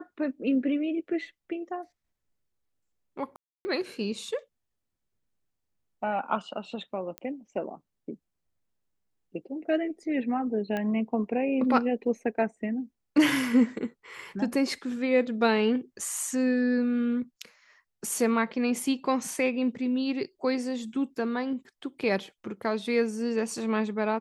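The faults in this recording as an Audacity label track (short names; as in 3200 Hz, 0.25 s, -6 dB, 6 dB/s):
3.360000	3.650000	gap 0.29 s
7.180000	7.180000	pop -21 dBFS
10.770000	10.770000	pop -19 dBFS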